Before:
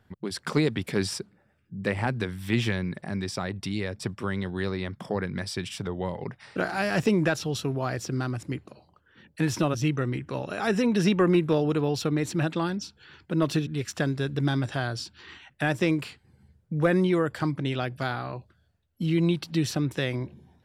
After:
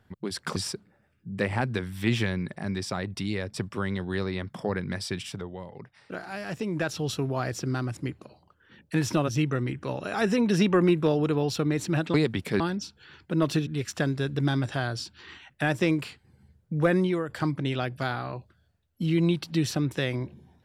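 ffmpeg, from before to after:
ffmpeg -i in.wav -filter_complex "[0:a]asplit=7[link_01][link_02][link_03][link_04][link_05][link_06][link_07];[link_01]atrim=end=0.562[link_08];[link_02]atrim=start=1.018:end=6.03,asetpts=PTS-STARTPTS,afade=type=out:start_time=4.622:duration=0.39:silence=0.354813[link_09];[link_03]atrim=start=6.03:end=7.12,asetpts=PTS-STARTPTS,volume=-9dB[link_10];[link_04]atrim=start=7.12:end=12.602,asetpts=PTS-STARTPTS,afade=type=in:duration=0.39:silence=0.354813[link_11];[link_05]atrim=start=0.558:end=1.022[link_12];[link_06]atrim=start=12.598:end=17.29,asetpts=PTS-STARTPTS,afade=type=out:start_time=4.212:duration=0.48:curve=qsin:silence=0.375837[link_13];[link_07]atrim=start=17.29,asetpts=PTS-STARTPTS,afade=type=in:duration=0.004:curve=hsin:silence=0.375837[link_14];[link_09][link_10][link_11]concat=n=3:v=0:a=1[link_15];[link_08][link_15]acrossfade=duration=0.004:curve1=hsin:curve2=hsin[link_16];[link_16][link_12]acrossfade=duration=0.004:curve1=hsin:curve2=hsin[link_17];[link_13][link_14]concat=n=2:v=0:a=1[link_18];[link_17][link_18]acrossfade=duration=0.004:curve1=hsin:curve2=hsin" out.wav

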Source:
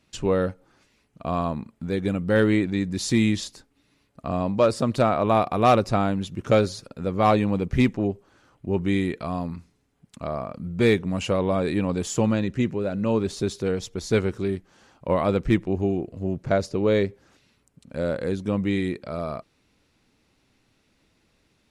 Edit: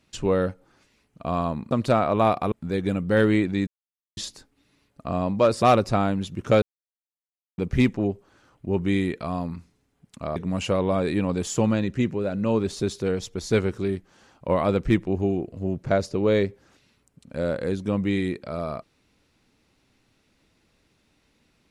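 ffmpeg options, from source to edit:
ffmpeg -i in.wav -filter_complex "[0:a]asplit=9[link_01][link_02][link_03][link_04][link_05][link_06][link_07][link_08][link_09];[link_01]atrim=end=1.712[link_10];[link_02]atrim=start=4.808:end=5.622[link_11];[link_03]atrim=start=1.708:end=2.86,asetpts=PTS-STARTPTS,afade=type=out:start_time=1.148:duration=0.004:curve=hsin[link_12];[link_04]atrim=start=2.86:end=3.36,asetpts=PTS-STARTPTS,volume=0[link_13];[link_05]atrim=start=3.36:end=4.812,asetpts=PTS-STARTPTS,afade=type=in:duration=0.004:curve=hsin[link_14];[link_06]atrim=start=5.618:end=6.62,asetpts=PTS-STARTPTS,afade=type=out:start_time=0.998:duration=0.004:curve=hsin[link_15];[link_07]atrim=start=6.62:end=7.58,asetpts=PTS-STARTPTS,volume=0[link_16];[link_08]atrim=start=7.58:end=10.362,asetpts=PTS-STARTPTS,afade=type=in:duration=0.004:curve=hsin[link_17];[link_09]atrim=start=10.958[link_18];[link_10][link_11]acrossfade=duration=0.004:curve1=hsin:curve2=hsin[link_19];[link_12][link_13][link_14]concat=n=3:v=0:a=1[link_20];[link_19][link_20]acrossfade=duration=0.004:curve1=hsin:curve2=hsin[link_21];[link_15][link_16][link_17]concat=n=3:v=0:a=1[link_22];[link_21][link_22]acrossfade=duration=0.004:curve1=hsin:curve2=hsin[link_23];[link_23][link_18]acrossfade=duration=0.004:curve1=hsin:curve2=hsin" out.wav

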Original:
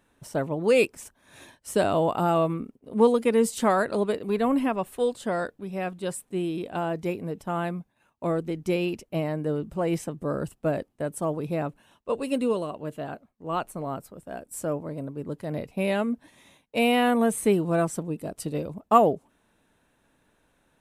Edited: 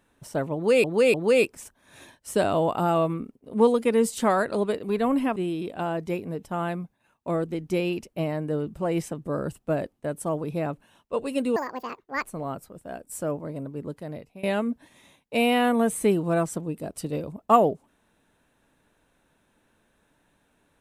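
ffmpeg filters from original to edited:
ffmpeg -i in.wav -filter_complex "[0:a]asplit=7[link_01][link_02][link_03][link_04][link_05][link_06][link_07];[link_01]atrim=end=0.842[link_08];[link_02]atrim=start=0.538:end=0.842[link_09];[link_03]atrim=start=0.538:end=4.762[link_10];[link_04]atrim=start=6.318:end=12.524[link_11];[link_05]atrim=start=12.52:end=13.66,asetpts=PTS-STARTPTS,asetrate=73647,aresample=44100,atrim=end_sample=30104,asetpts=PTS-STARTPTS[link_12];[link_06]atrim=start=13.656:end=15.85,asetpts=PTS-STARTPTS,afade=type=out:start_time=1.574:duration=0.62:silence=0.0944061[link_13];[link_07]atrim=start=15.85,asetpts=PTS-STARTPTS,afade=type=in:duration=0.004:curve=hsin:silence=0.0944061[link_14];[link_08][link_09]acrossfade=duration=0.004:curve1=hsin:curve2=hsin[link_15];[link_15][link_10]acrossfade=duration=0.004:curve1=hsin:curve2=hsin[link_16];[link_16][link_11]acrossfade=duration=0.004:curve1=hsin:curve2=hsin[link_17];[link_17][link_12]acrossfade=duration=0.004:curve1=hsin:curve2=hsin[link_18];[link_13][link_14]concat=n=2:v=0:a=1[link_19];[link_18][link_19]acrossfade=duration=0.004:curve1=hsin:curve2=hsin" out.wav

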